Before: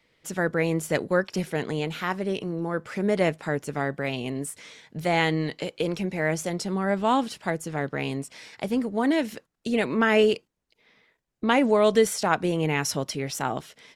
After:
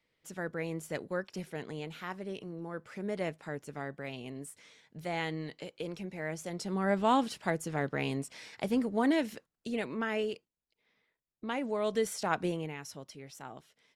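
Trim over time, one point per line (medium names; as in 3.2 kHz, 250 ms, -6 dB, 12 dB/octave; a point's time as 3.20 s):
6.38 s -12 dB
6.86 s -4 dB
9.03 s -4 dB
10.24 s -14 dB
11.63 s -14 dB
12.47 s -6.5 dB
12.77 s -18 dB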